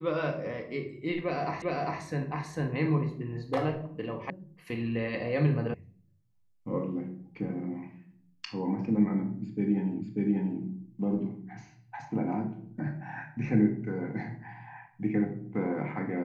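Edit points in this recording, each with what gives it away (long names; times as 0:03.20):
0:01.62: the same again, the last 0.4 s
0:04.30: cut off before it has died away
0:05.74: cut off before it has died away
0:10.02: the same again, the last 0.59 s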